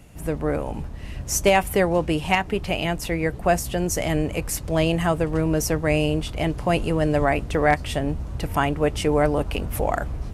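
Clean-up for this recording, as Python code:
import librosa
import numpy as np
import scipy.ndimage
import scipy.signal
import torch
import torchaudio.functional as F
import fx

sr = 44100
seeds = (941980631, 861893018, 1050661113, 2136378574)

y = fx.fix_declip(x, sr, threshold_db=-8.0)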